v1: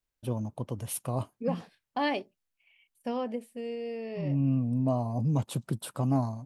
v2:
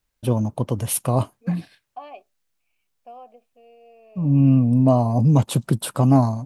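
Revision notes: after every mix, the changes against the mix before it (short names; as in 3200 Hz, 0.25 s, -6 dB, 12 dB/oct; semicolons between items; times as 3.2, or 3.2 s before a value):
first voice +11.5 dB; second voice: add vowel filter a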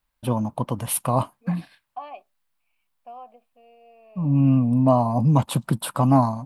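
master: add fifteen-band EQ 100 Hz -7 dB, 400 Hz -7 dB, 1000 Hz +6 dB, 6300 Hz -7 dB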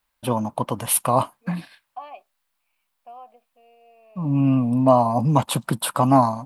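first voice +5.0 dB; master: add low shelf 250 Hz -10 dB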